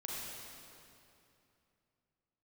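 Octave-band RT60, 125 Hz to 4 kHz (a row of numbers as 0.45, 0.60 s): 3.4, 3.1, 2.8, 2.7, 2.5, 2.2 s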